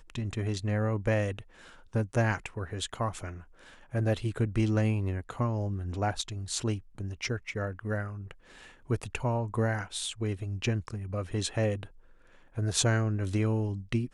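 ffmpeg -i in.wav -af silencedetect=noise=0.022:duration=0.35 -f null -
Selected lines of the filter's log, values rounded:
silence_start: 1.39
silence_end: 1.95 | silence_duration: 0.56
silence_start: 3.31
silence_end: 3.94 | silence_duration: 0.63
silence_start: 8.31
silence_end: 8.90 | silence_duration: 0.59
silence_start: 11.83
silence_end: 12.58 | silence_duration: 0.74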